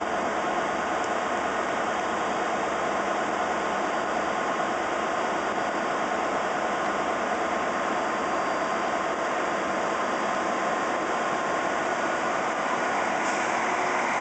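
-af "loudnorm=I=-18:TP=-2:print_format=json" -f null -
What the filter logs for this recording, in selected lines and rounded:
"input_i" : "-26.5",
"input_tp" : "-13.7",
"input_lra" : "0.9",
"input_thresh" : "-36.5",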